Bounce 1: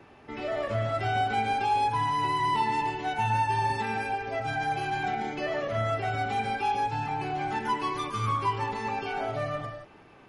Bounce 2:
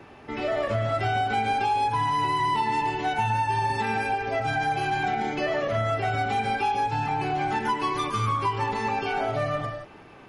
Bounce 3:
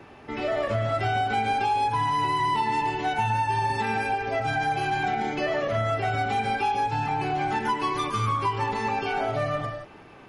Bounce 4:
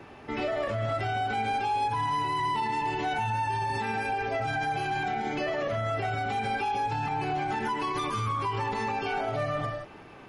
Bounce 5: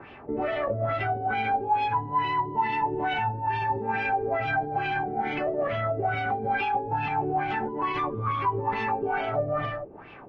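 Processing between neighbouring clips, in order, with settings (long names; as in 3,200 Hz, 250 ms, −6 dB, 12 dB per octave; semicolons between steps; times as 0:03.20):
downward compressor, threshold −27 dBFS, peak gain reduction 5.5 dB; level +5.5 dB
no processing that can be heard
brickwall limiter −22 dBFS, peak gain reduction 7 dB
auto-filter low-pass sine 2.3 Hz 420–3,000 Hz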